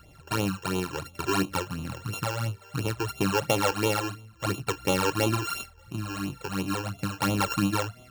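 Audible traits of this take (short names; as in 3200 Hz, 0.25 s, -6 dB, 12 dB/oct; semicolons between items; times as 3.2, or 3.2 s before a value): a buzz of ramps at a fixed pitch in blocks of 32 samples; phasing stages 12, 2.9 Hz, lowest notch 200–1700 Hz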